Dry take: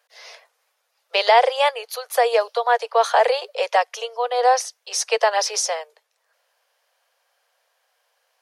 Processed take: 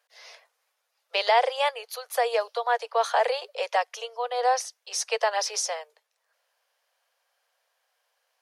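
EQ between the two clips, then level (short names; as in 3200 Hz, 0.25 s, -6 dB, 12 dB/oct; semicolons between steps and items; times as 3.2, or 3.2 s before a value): low shelf 340 Hz -5.5 dB; -5.5 dB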